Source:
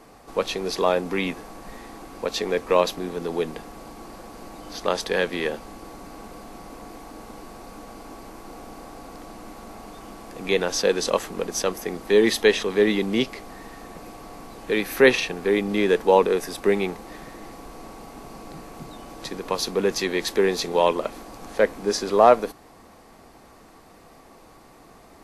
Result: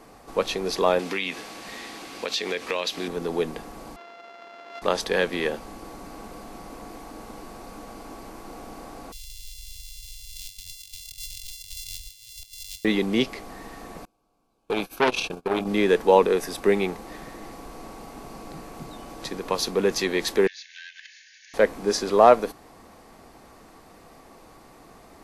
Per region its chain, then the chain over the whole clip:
0.99–3.08 weighting filter D + compressor 4:1, threshold -24 dBFS
3.96–4.82 sample sorter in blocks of 64 samples + HPF 560 Hz + air absorption 220 m
9.12–12.85 sample sorter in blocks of 64 samples + inverse Chebyshev band-stop 230–1200 Hz, stop band 60 dB + negative-ratio compressor -41 dBFS
14.05–15.67 gate -32 dBFS, range -30 dB + Butterworth band-stop 1900 Hz, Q 3.2 + core saturation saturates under 1700 Hz
20.47–21.54 minimum comb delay 2.3 ms + brick-wall FIR band-pass 1500–7000 Hz + compressor 5:1, threshold -39 dBFS
whole clip: dry

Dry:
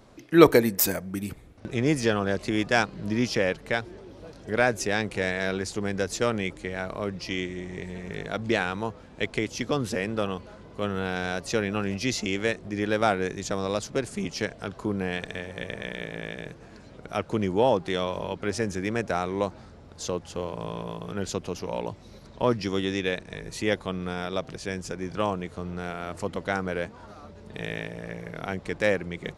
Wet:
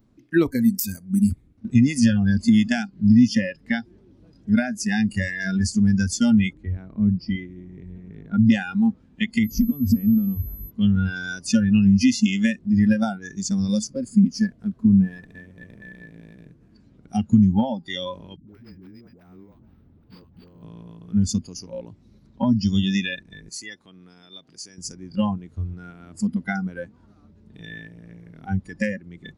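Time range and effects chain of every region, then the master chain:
6.53–8.45 LPF 1500 Hz 6 dB/oct + low shelf 240 Hz +2.5 dB
9.43–10.69 tilt -2.5 dB/oct + compressor 8:1, threshold -28 dBFS + whine 12000 Hz -47 dBFS
13.87–16.75 CVSD 64 kbps + high shelf 2700 Hz -7 dB + notch 810 Hz, Q 11
18.36–20.63 compressor 20:1, threshold -33 dBFS + dispersion highs, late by 0.12 s, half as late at 380 Hz + decimation joined by straight lines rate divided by 6×
23.49–24.78 HPF 500 Hz 6 dB/oct + compressor 1.5:1, threshold -40 dBFS
whole clip: spectral noise reduction 24 dB; compressor 16:1, threshold -31 dBFS; resonant low shelf 380 Hz +10.5 dB, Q 1.5; gain +8 dB

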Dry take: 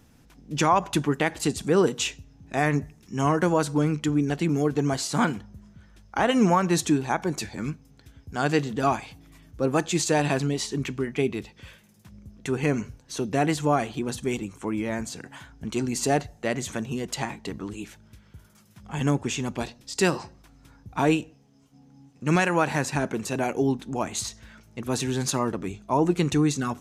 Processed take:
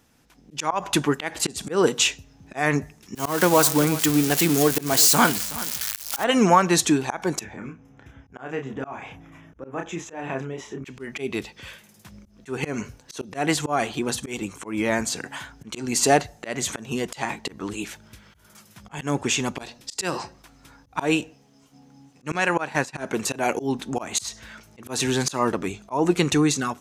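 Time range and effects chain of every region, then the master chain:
3.15–6.24 switching spikes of -19.5 dBFS + echo 0.373 s -17 dB
7.39–10.85 compressor 2:1, threshold -41 dBFS + running mean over 10 samples + doubler 30 ms -5 dB
22.34–22.98 expander -23 dBFS + high shelf 8600 Hz -8 dB
whole clip: AGC gain up to 10 dB; low shelf 290 Hz -10 dB; auto swell 0.177 s

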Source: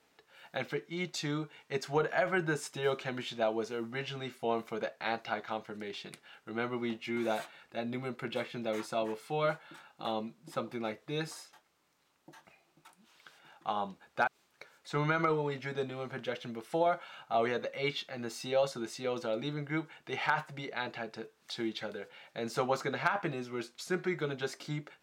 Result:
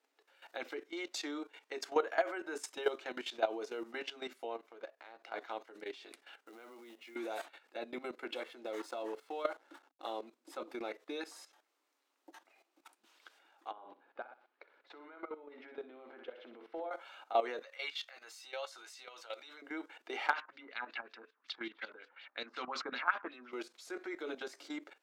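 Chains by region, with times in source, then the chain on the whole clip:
4.56–5.34 G.711 law mismatch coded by A + high shelf 5600 Hz -10.5 dB + compressor 2:1, threshold -44 dBFS
6.41–7.16 notches 60/120/180 Hz + compressor 16:1, threshold -44 dBFS + short-mantissa float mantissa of 2-bit
8.43–10.28 notch 2400 Hz, Q 10 + backlash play -49.5 dBFS
13.71–16.91 compressor 4:1, threshold -39 dBFS + air absorption 360 m + feedback echo 62 ms, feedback 38%, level -9 dB
17.62–19.62 HPF 1100 Hz + doubler 13 ms -11 dB
20.33–23.52 band shelf 530 Hz -10 dB + LFO low-pass sine 5.4 Hz 890–4500 Hz
whole clip: elliptic high-pass 270 Hz, stop band 40 dB; level quantiser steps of 14 dB; gain +2 dB

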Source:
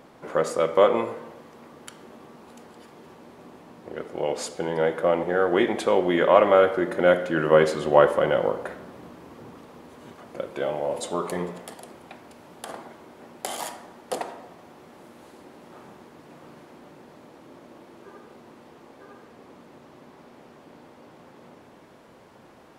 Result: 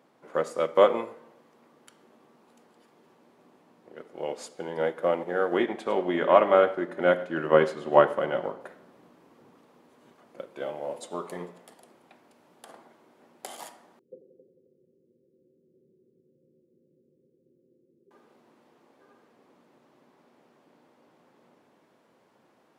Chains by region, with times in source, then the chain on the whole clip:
5.57–8.61 high shelf 5200 Hz -8 dB + notch 500 Hz, Q 10 + echo 0.103 s -15.5 dB
13.99–18.11 rippled Chebyshev low-pass 540 Hz, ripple 9 dB + multi-head echo 89 ms, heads second and third, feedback 44%, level -10 dB
whole clip: HPF 150 Hz 12 dB/oct; upward expander 1.5:1, over -37 dBFS

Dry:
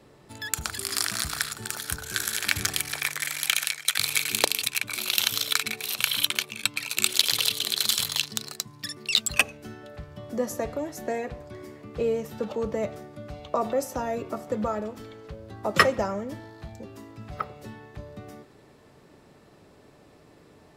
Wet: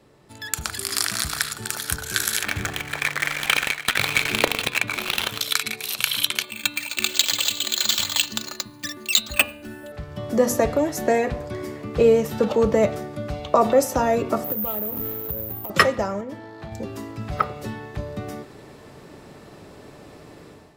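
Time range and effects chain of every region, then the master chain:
2.43–5.41 median filter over 9 samples + high shelf 10000 Hz -4 dB + hard clip -18 dBFS
6.43–9.92 LPF 6700 Hz + careless resampling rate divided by 4×, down filtered, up hold + comb 3.4 ms, depth 68%
14.44–15.7 median filter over 25 samples + careless resampling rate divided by 3×, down none, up zero stuff + compressor 8:1, threshold -31 dBFS
16.21–16.72 HPF 220 Hz 6 dB/oct + high shelf 4000 Hz -10.5 dB
whole clip: de-hum 242.5 Hz, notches 20; AGC; gain -1 dB

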